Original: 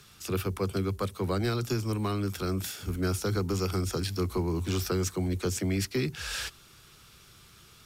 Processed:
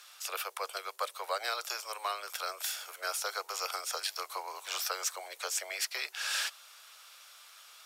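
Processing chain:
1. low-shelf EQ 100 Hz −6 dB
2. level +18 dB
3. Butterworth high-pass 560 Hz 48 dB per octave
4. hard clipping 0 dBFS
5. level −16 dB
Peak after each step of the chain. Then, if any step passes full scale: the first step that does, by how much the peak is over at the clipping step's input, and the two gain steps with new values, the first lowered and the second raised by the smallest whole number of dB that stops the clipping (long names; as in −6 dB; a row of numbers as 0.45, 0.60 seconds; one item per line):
−19.5, −1.5, −3.0, −3.0, −19.0 dBFS
no step passes full scale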